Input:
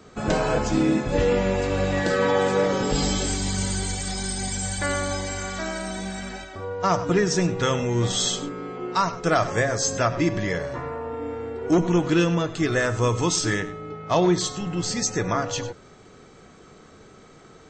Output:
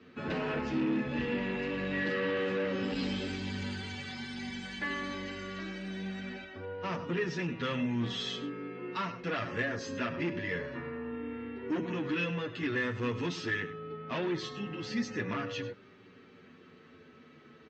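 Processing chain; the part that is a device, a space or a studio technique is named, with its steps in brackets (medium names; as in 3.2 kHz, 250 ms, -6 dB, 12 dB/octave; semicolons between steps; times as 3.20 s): 5.28–7.09 s: dynamic bell 1.8 kHz, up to -5 dB, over -38 dBFS, Q 1.3; barber-pole flanger into a guitar amplifier (endless flanger 8.6 ms -0.3 Hz; saturation -23 dBFS, distortion -11 dB; cabinet simulation 90–4500 Hz, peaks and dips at 240 Hz +10 dB, 410 Hz +3 dB, 720 Hz -7 dB, 1.8 kHz +7 dB, 2.7 kHz +9 dB); trim -6.5 dB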